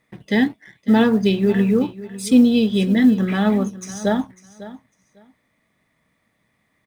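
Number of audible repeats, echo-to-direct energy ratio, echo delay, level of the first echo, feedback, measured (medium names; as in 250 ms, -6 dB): 2, -16.5 dB, 550 ms, -16.5 dB, 17%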